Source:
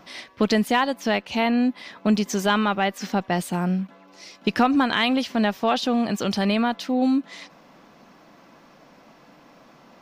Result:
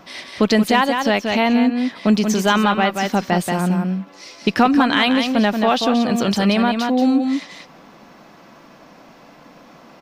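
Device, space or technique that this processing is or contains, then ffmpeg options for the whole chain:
ducked delay: -filter_complex "[0:a]asplit=3[link_01][link_02][link_03];[link_02]adelay=181,volume=-3dB[link_04];[link_03]apad=whole_len=449681[link_05];[link_04][link_05]sidechaincompress=threshold=-22dB:ratio=8:attack=29:release=390[link_06];[link_01][link_06]amix=inputs=2:normalize=0,volume=4.5dB"

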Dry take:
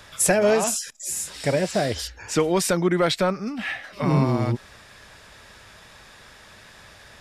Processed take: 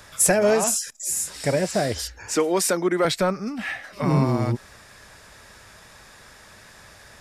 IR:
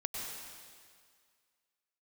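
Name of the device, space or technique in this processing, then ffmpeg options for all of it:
exciter from parts: -filter_complex "[0:a]asplit=2[link_01][link_02];[link_02]highpass=3000,asoftclip=type=tanh:threshold=-16.5dB,highpass=2700,volume=-4dB[link_03];[link_01][link_03]amix=inputs=2:normalize=0,asettb=1/sr,asplit=3[link_04][link_05][link_06];[link_04]atrim=end=2.364[link_07];[link_05]atrim=start=2.36:end=3.05,asetpts=PTS-STARTPTS,afade=type=in:duration=0.004:curve=qsin,afade=type=out:start_time=0.686:duration=0.004:curve=qsin,highpass=frequency=220:width=0.5412,highpass=frequency=220:width=1.3066[link_08];[link_06]atrim=start=3.046[link_09];[link_07][link_08]acrossfade=duration=0.004:curve1=hsin:curve2=qsin[link_10];[link_10][link_09]acrossfade=duration=0.004:curve1=qsin:curve2=hsin"

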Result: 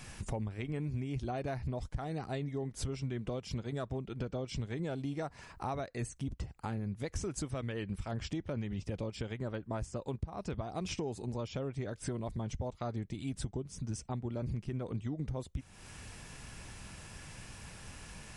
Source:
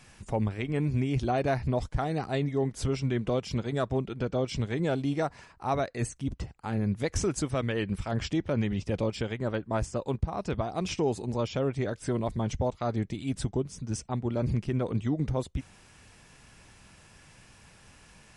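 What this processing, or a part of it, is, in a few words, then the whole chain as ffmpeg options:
ASMR close-microphone chain: -af "lowshelf=frequency=140:gain=5,acompressor=threshold=-41dB:ratio=4,highshelf=frequency=9000:gain=5,volume=4dB"

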